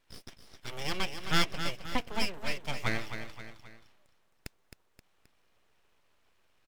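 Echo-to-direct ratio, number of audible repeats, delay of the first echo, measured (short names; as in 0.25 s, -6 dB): -8.0 dB, 3, 0.264 s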